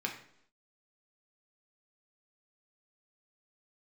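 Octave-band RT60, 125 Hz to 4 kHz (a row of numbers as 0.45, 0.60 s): 0.65, 0.75, 0.75, 0.65, 0.65, 0.65 s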